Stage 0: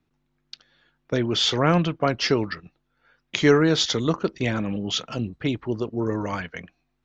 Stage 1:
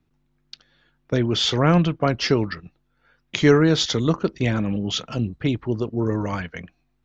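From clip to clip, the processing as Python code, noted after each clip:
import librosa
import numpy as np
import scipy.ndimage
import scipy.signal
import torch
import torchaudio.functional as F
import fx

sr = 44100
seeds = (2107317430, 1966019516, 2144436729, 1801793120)

y = fx.low_shelf(x, sr, hz=200.0, db=7.0)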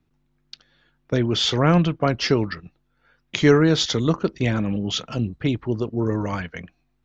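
y = x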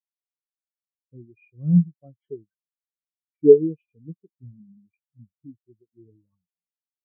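y = fx.freq_compress(x, sr, knee_hz=1200.0, ratio=1.5)
y = fx.spectral_expand(y, sr, expansion=4.0)
y = y * librosa.db_to_amplitude(2.5)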